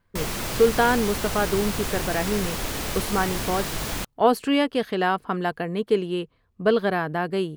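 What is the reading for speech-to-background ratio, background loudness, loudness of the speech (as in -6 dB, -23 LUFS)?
4.5 dB, -29.0 LUFS, -24.5 LUFS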